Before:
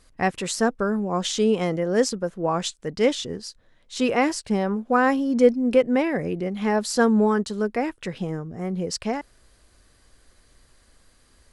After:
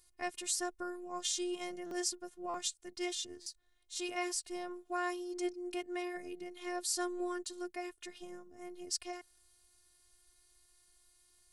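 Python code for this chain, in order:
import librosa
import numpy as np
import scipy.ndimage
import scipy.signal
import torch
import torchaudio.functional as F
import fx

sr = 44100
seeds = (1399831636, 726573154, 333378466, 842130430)

y = scipy.signal.lfilter([1.0, -0.8], [1.0], x)
y = fx.robotise(y, sr, hz=355.0)
y = fx.buffer_glitch(y, sr, at_s=(1.86, 2.49, 3.41), block=256, repeats=8)
y = F.gain(torch.from_numpy(y), -1.5).numpy()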